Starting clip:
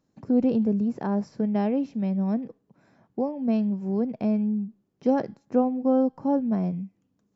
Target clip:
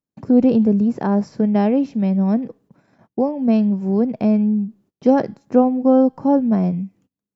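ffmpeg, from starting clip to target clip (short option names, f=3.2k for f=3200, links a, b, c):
-af "agate=range=-26dB:threshold=-59dB:ratio=16:detection=peak,volume=8dB"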